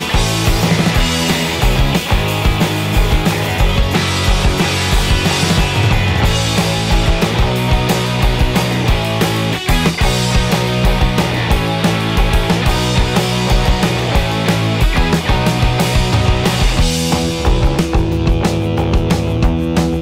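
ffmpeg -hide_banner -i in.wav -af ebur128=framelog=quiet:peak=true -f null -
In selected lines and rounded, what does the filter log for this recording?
Integrated loudness:
  I:         -14.5 LUFS
  Threshold: -24.4 LUFS
Loudness range:
  LRA:         0.8 LU
  Threshold: -34.4 LUFS
  LRA low:   -14.7 LUFS
  LRA high:  -13.9 LUFS
True peak:
  Peak:       -2.0 dBFS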